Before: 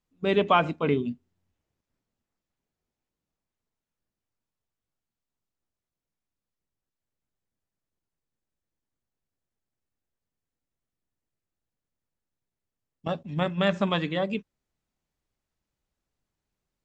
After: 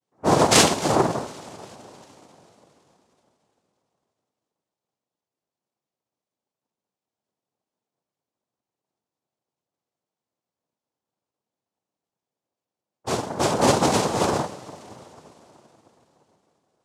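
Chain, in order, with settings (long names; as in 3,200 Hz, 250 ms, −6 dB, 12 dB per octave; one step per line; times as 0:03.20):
moving average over 9 samples
coupled-rooms reverb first 0.46 s, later 3.8 s, from −22 dB, DRR −9.5 dB
cochlear-implant simulation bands 2
level −4 dB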